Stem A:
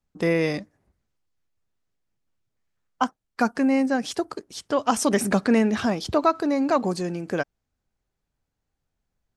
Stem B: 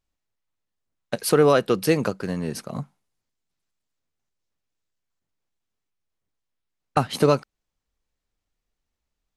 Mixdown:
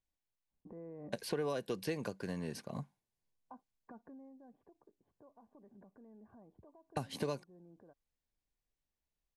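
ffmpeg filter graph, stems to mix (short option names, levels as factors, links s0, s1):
-filter_complex "[0:a]lowpass=f=1100:w=0.5412,lowpass=f=1100:w=1.3066,acompressor=threshold=0.0501:ratio=6,alimiter=level_in=2.24:limit=0.0631:level=0:latency=1:release=227,volume=0.447,adelay=500,volume=0.299,afade=t=out:st=3.71:d=0.64:silence=0.298538[s0];[1:a]volume=0.316[s1];[s0][s1]amix=inputs=2:normalize=0,acrossover=split=600|5000[s2][s3][s4];[s2]acompressor=threshold=0.0141:ratio=4[s5];[s3]acompressor=threshold=0.00794:ratio=4[s6];[s4]acompressor=threshold=0.00224:ratio=4[s7];[s5][s6][s7]amix=inputs=3:normalize=0,asuperstop=centerf=1300:order=8:qfactor=6.5"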